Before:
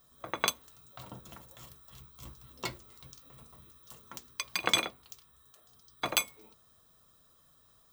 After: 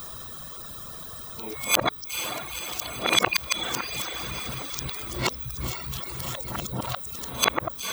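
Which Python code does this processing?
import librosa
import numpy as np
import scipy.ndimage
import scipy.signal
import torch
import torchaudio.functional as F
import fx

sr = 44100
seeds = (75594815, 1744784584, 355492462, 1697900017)

y = np.flip(x).copy()
y = fx.echo_diffused(y, sr, ms=481, feedback_pct=53, wet_db=-16)
y = fx.dereverb_blind(y, sr, rt60_s=0.68)
y = fx.env_flatten(y, sr, amount_pct=50)
y = F.gain(torch.from_numpy(y), 5.0).numpy()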